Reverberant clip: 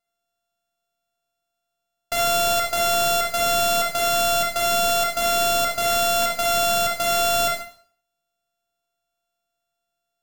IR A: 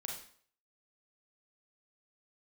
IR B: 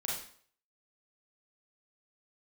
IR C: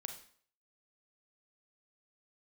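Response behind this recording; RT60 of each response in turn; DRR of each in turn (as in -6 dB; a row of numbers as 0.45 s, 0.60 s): A; 0.55 s, 0.55 s, 0.55 s; -0.5 dB, -4.5 dB, 5.0 dB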